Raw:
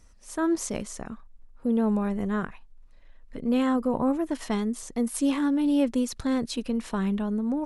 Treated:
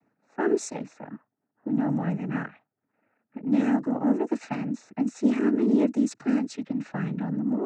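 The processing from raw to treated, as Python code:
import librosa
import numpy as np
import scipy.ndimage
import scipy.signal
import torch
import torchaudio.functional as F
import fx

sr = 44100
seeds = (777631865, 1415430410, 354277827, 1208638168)

y = fx.fixed_phaser(x, sr, hz=690.0, stages=8)
y = fx.noise_vocoder(y, sr, seeds[0], bands=12)
y = fx.env_lowpass(y, sr, base_hz=1200.0, full_db=-23.0)
y = y * 10.0 ** (2.0 / 20.0)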